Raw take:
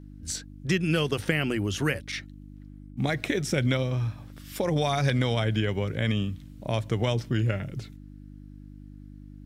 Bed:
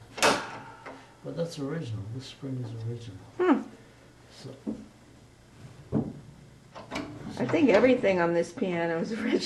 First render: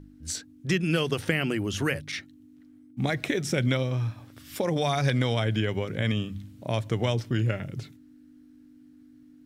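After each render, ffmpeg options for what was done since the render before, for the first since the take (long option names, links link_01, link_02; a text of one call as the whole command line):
ffmpeg -i in.wav -af "bandreject=frequency=50:width_type=h:width=4,bandreject=frequency=100:width_type=h:width=4,bandreject=frequency=150:width_type=h:width=4,bandreject=frequency=200:width_type=h:width=4" out.wav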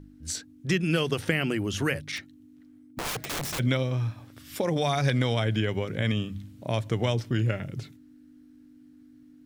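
ffmpeg -i in.wav -filter_complex "[0:a]asplit=3[link_01][link_02][link_03];[link_01]afade=type=out:start_time=2.16:duration=0.02[link_04];[link_02]aeval=exprs='(mod(22.4*val(0)+1,2)-1)/22.4':channel_layout=same,afade=type=in:start_time=2.16:duration=0.02,afade=type=out:start_time=3.58:duration=0.02[link_05];[link_03]afade=type=in:start_time=3.58:duration=0.02[link_06];[link_04][link_05][link_06]amix=inputs=3:normalize=0" out.wav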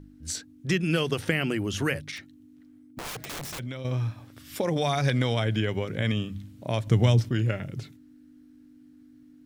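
ffmpeg -i in.wav -filter_complex "[0:a]asettb=1/sr,asplit=3[link_01][link_02][link_03];[link_01]atrim=end=2.104[link_04];[link_02]atrim=start=2.1:end=3.85,asetpts=PTS-STARTPTS,afade=type=in:duration=0.004:curve=qsin,afade=type=out:start_time=1.746:duration=0.004:curve=qsin,acompressor=threshold=-35dB:ratio=3:attack=3.2:release=140:knee=1:detection=peak[link_05];[link_03]atrim=start=3.846[link_06];[link_04][link_05]acrossfade=duration=0.004:curve1=hsin:curve2=qsin[link_07];[link_07][link_06]acrossfade=duration=0.004:curve1=qsin:curve2=hsin,asettb=1/sr,asplit=3[link_08][link_09][link_10];[link_08]atrim=end=6.874[link_11];[link_09]atrim=start=6.87:end=7.29,asetpts=PTS-STARTPTS,afade=type=in:duration=0.004:curve=qsin,afade=type=out:start_time=0.416:duration=0.004:curve=qsin,bass=frequency=250:gain=9,treble=frequency=4000:gain=4[link_12];[link_10]atrim=start=7.286[link_13];[link_11][link_12]acrossfade=duration=0.004:curve1=hsin:curve2=qsin[link_14];[link_14][link_13]acrossfade=duration=0.004:curve1=qsin:curve2=hsin" out.wav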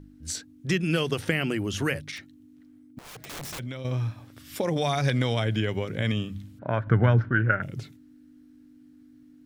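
ffmpeg -i in.wav -filter_complex "[0:a]asplit=3[link_01][link_02][link_03];[link_01]afade=type=out:start_time=6.58:duration=0.02[link_04];[link_02]lowpass=frequency=1500:width_type=q:width=8.6,afade=type=in:start_time=6.58:duration=0.02,afade=type=out:start_time=7.61:duration=0.02[link_05];[link_03]afade=type=in:start_time=7.61:duration=0.02[link_06];[link_04][link_05][link_06]amix=inputs=3:normalize=0,asplit=2[link_07][link_08];[link_07]atrim=end=2.99,asetpts=PTS-STARTPTS,afade=type=out:start_time=2.986:duration=0.004:curve=hsin:silence=0.199526[link_09];[link_08]atrim=start=2.99,asetpts=PTS-STARTPTS,afade=type=in:duration=0.48:silence=0.199526[link_10];[link_09][link_10]concat=n=2:v=0:a=1" out.wav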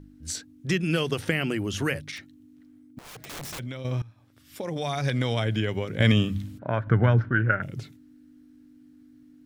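ffmpeg -i in.wav -filter_complex "[0:a]asettb=1/sr,asplit=3[link_01][link_02][link_03];[link_01]atrim=end=6.004[link_04];[link_02]atrim=start=6:end=6.58,asetpts=PTS-STARTPTS,afade=type=in:duration=0.004:curve=qsin,afade=type=out:start_time=0.576:duration=0.004:curve=qsin,acontrast=89[link_05];[link_03]atrim=start=6.576[link_06];[link_04][link_05]acrossfade=duration=0.004:curve1=hsin:curve2=qsin[link_07];[link_07][link_06]acrossfade=duration=0.004:curve1=qsin:curve2=hsin,asplit=2[link_08][link_09];[link_08]atrim=end=4.02,asetpts=PTS-STARTPTS,afade=type=out:start_time=4.016:duration=0.004:curve=hsin:silence=0.0944061[link_10];[link_09]atrim=start=4.02,asetpts=PTS-STARTPTS,afade=type=in:duration=1.37:silence=0.0944061[link_11];[link_10][link_11]concat=n=2:v=0:a=1" out.wav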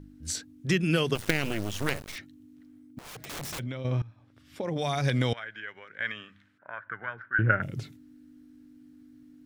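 ffmpeg -i in.wav -filter_complex "[0:a]asettb=1/sr,asplit=3[link_01][link_02][link_03];[link_01]atrim=end=1.154[link_04];[link_02]atrim=start=1.15:end=2.16,asetpts=PTS-STARTPTS,afade=type=in:duration=0.004:curve=qsin,afade=type=out:start_time=1.006:duration=0.004:curve=qsin,acrusher=bits=4:dc=4:mix=0:aa=0.000001[link_05];[link_03]atrim=start=2.156[link_06];[link_04][link_05]acrossfade=duration=0.004:curve1=hsin:curve2=qsin[link_07];[link_07][link_06]acrossfade=duration=0.004:curve1=qsin:curve2=hsin,asettb=1/sr,asplit=3[link_08][link_09][link_10];[link_08]atrim=end=3.624[link_11];[link_09]atrim=start=3.62:end=4.79,asetpts=PTS-STARTPTS,afade=type=in:duration=0.004:curve=qsin,afade=type=out:start_time=1.166:duration=0.004:curve=qsin,aemphasis=mode=reproduction:type=50fm[link_12];[link_10]atrim=start=4.786[link_13];[link_11][link_12]acrossfade=duration=0.004:curve1=hsin:curve2=qsin[link_14];[link_14][link_13]acrossfade=duration=0.004:curve1=qsin:curve2=hsin,asettb=1/sr,asplit=3[link_15][link_16][link_17];[link_15]atrim=end=5.334[link_18];[link_16]atrim=start=5.33:end=7.39,asetpts=PTS-STARTPTS,afade=type=in:duration=0.004:curve=qsin,afade=type=out:start_time=2.056:duration=0.004:curve=qsin,bandpass=frequency=1600:width_type=q:width=3.3[link_19];[link_17]atrim=start=7.386[link_20];[link_18][link_19]acrossfade=duration=0.004:curve1=hsin:curve2=qsin[link_21];[link_21][link_20]acrossfade=duration=0.004:curve1=qsin:curve2=hsin" out.wav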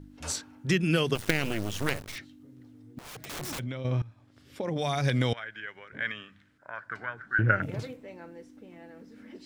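ffmpeg -i in.wav -i bed.wav -filter_complex "[1:a]volume=-21.5dB[link_01];[0:a][link_01]amix=inputs=2:normalize=0" out.wav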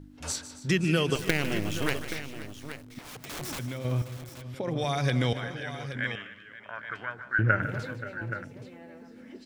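ffmpeg -i in.wav -af "aecho=1:1:152|272|528|825:0.211|0.133|0.158|0.266" out.wav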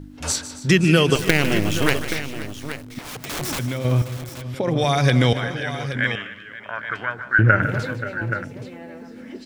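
ffmpeg -i in.wav -af "volume=9.5dB,alimiter=limit=-1dB:level=0:latency=1" out.wav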